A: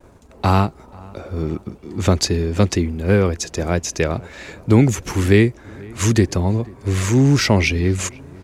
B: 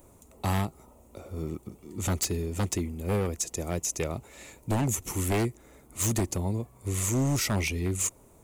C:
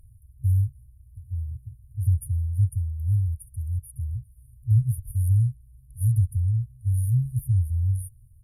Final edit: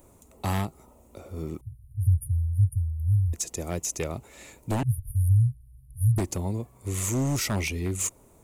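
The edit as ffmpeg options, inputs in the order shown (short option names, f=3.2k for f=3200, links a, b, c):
-filter_complex "[2:a]asplit=2[a][b];[1:a]asplit=3[c][d][e];[c]atrim=end=1.612[f];[a]atrim=start=1.608:end=3.332[g];[d]atrim=start=3.328:end=4.832[h];[b]atrim=start=4.828:end=6.182[i];[e]atrim=start=6.178[j];[f][g]acrossfade=d=0.004:c1=hsin:c2=hsin[k];[k][h]acrossfade=d=0.004:c1=hsin:c2=hsin[l];[l][i]acrossfade=d=0.004:c1=hsin:c2=hsin[m];[m][j]acrossfade=d=0.004:c1=hsin:c2=hsin"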